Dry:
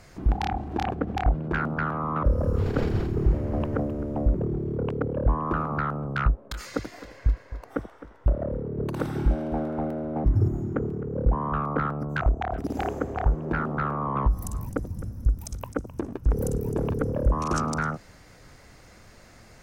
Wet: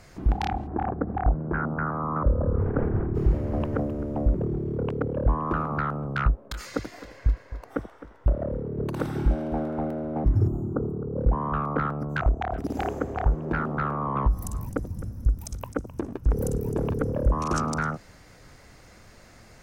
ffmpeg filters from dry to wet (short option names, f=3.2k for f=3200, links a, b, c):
-filter_complex "[0:a]asplit=3[a][b][c];[a]afade=t=out:st=0.66:d=0.02[d];[b]lowpass=f=1.6k:w=0.5412,lowpass=f=1.6k:w=1.3066,afade=t=in:st=0.66:d=0.02,afade=t=out:st=3.14:d=0.02[e];[c]afade=t=in:st=3.14:d=0.02[f];[d][e][f]amix=inputs=3:normalize=0,asettb=1/sr,asplit=3[g][h][i];[g]atrim=end=10.474[j];[h]atrim=start=10.47:end=11.2,asetpts=PTS-STARTPTS,afade=t=in:d=0.004:c=qsin,afade=t=out:st=0.726:d=0.004:c=qsin,asuperstop=centerf=3300:order=12:qfactor=0.54[k];[i]atrim=start=11.196[l];[j][k]acrossfade=d=0.004:c1=hsin:c2=qsin[m];[m][l]acrossfade=d=0.004:c1=qsin:c2=hsin"